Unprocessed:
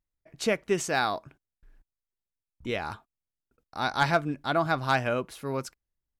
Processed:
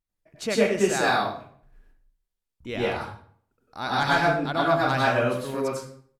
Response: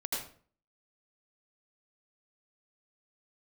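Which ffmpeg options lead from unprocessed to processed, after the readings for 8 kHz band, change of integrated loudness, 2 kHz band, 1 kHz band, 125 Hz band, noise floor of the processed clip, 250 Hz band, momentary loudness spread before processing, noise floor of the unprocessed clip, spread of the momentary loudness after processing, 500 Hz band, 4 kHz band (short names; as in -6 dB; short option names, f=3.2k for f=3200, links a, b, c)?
+3.5 dB, +4.5 dB, +4.5 dB, +4.0 dB, +3.0 dB, -84 dBFS, +5.0 dB, 13 LU, under -85 dBFS, 13 LU, +5.5 dB, +4.0 dB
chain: -filter_complex "[0:a]aecho=1:1:117:0.075[a];[1:a]atrim=start_sample=2205,asetrate=35721,aresample=44100[b];[a][b]afir=irnorm=-1:irlink=0,volume=-1dB"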